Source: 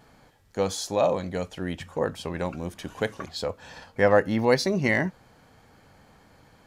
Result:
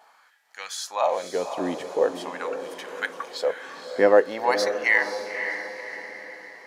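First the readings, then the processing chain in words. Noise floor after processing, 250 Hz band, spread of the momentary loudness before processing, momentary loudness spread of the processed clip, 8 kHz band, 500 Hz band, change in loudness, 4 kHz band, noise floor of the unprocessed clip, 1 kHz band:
-58 dBFS, -5.0 dB, 13 LU, 17 LU, 0.0 dB, +2.0 dB, +1.5 dB, +0.5 dB, -58 dBFS, +3.5 dB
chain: LFO high-pass sine 0.45 Hz 290–1800 Hz; diffused feedback echo 0.535 s, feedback 47%, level -8 dB; gain -1 dB

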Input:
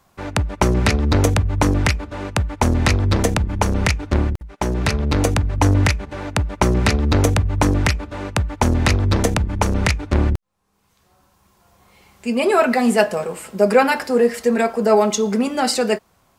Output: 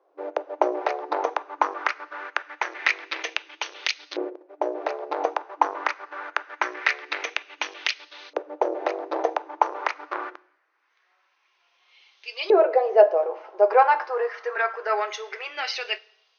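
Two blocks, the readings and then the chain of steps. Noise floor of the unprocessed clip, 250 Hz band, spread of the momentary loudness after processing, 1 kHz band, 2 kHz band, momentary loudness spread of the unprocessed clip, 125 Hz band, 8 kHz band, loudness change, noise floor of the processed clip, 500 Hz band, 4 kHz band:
-61 dBFS, -18.5 dB, 14 LU, -1.5 dB, -3.5 dB, 8 LU, under -40 dB, -17.0 dB, -7.0 dB, -68 dBFS, -4.0 dB, -6.0 dB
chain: two-slope reverb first 0.75 s, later 2.6 s, from -21 dB, DRR 19 dB; LFO band-pass saw up 0.24 Hz 460–4100 Hz; FFT band-pass 300–6500 Hz; gain +3.5 dB

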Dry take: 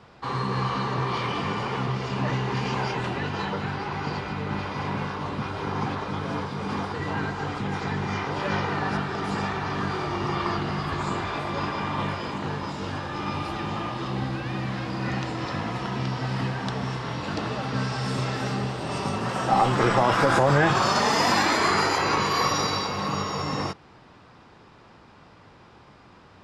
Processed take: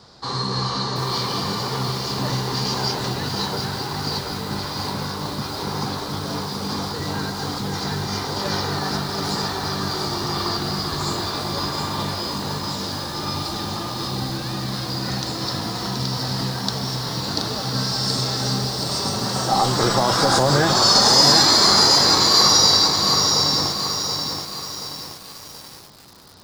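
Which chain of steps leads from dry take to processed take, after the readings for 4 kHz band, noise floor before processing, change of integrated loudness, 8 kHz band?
+15.0 dB, -52 dBFS, +6.5 dB, +15.0 dB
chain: resonant high shelf 3400 Hz +9 dB, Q 3; lo-fi delay 0.727 s, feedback 55%, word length 6-bit, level -5 dB; gain +1.5 dB

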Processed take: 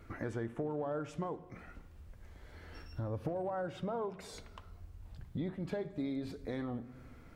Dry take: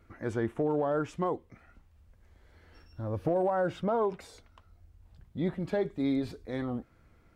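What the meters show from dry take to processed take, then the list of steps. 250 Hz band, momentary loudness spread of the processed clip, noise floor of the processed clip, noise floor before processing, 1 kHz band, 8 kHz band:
-7.0 dB, 17 LU, -55 dBFS, -63 dBFS, -8.5 dB, n/a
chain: compressor 5:1, threshold -43 dBFS, peak gain reduction 16.5 dB; shoebox room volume 1200 m³, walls mixed, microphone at 0.36 m; gain +6 dB

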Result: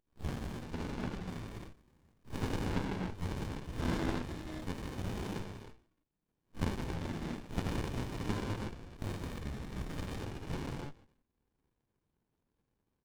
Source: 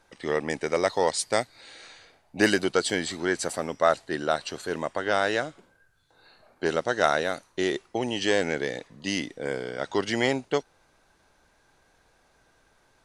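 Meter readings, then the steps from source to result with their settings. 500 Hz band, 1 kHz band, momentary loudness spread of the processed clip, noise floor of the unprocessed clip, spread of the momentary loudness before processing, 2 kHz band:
-18.5 dB, -15.0 dB, 9 LU, -65 dBFS, 9 LU, -18.0 dB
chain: spectral swells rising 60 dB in 0.38 s; HPF 200 Hz 12 dB/oct; spectral gate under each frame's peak -20 dB weak; treble ducked by the level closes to 1400 Hz, closed at -36.5 dBFS; spectral noise reduction 29 dB; bell 3400 Hz +12.5 dB 0.64 oct; frequency-shifting echo 0.158 s, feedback 31%, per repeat -58 Hz, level -21.5 dB; non-linear reverb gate 0.34 s flat, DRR -6.5 dB; running maximum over 65 samples; gain +4.5 dB

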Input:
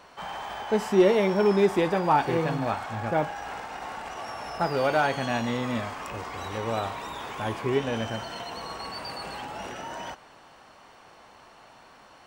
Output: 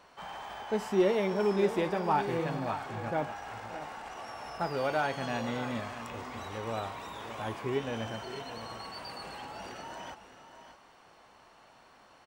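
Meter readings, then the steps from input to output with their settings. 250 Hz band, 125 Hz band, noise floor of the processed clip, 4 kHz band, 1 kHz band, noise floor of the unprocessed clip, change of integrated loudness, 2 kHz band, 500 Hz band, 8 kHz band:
-6.5 dB, -6.5 dB, -59 dBFS, -6.0 dB, -6.0 dB, -53 dBFS, -6.5 dB, -6.0 dB, -6.0 dB, -6.0 dB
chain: tapped delay 0.578/0.613 s -17.5/-12.5 dB; gain -6.5 dB

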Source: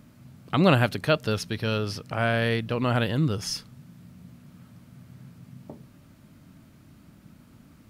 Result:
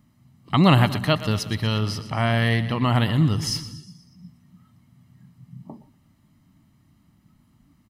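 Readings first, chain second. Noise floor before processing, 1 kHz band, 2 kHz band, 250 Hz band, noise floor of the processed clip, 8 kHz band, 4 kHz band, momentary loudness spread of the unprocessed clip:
-54 dBFS, +4.0 dB, +1.0 dB, +4.5 dB, -61 dBFS, +3.5 dB, +4.5 dB, 9 LU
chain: comb 1 ms, depth 57%; split-band echo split 340 Hz, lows 0.182 s, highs 0.12 s, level -14 dB; spectral noise reduction 12 dB; gain +2.5 dB

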